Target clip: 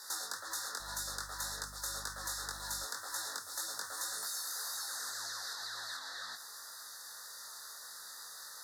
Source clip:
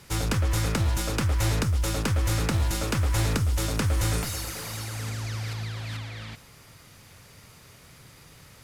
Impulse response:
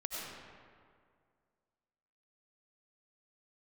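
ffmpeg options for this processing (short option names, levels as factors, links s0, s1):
-filter_complex "[0:a]highpass=1300,acompressor=threshold=0.00631:ratio=6,asettb=1/sr,asplit=3[s0][s1][s2];[s0]atrim=end=0.804[s3];[s1]atrim=start=0.8:end=2.84,asetpts=PTS-STARTPTS,afade=t=in:d=0.004:c=qsin,afade=t=out:st=2.036:d=0.004:c=qsin,aeval=exprs='val(0)+0.000794*(sin(2*PI*50*n/s)+sin(2*PI*2*50*n/s)/2+sin(2*PI*3*50*n/s)/3+sin(2*PI*4*50*n/s)/4+sin(2*PI*5*50*n/s)/5)':c=same[s4];[s2]atrim=start=2.836[s5];[s3][s4]acrossfade=d=0.004:c1=hsin:c2=qsin[s6];[s6][s5]acrossfade=d=0.004:c1=qsin:c2=hsin,flanger=delay=18.5:depth=4.1:speed=1.9,asuperstop=centerf=2600:order=12:qfactor=1.4,volume=3.35"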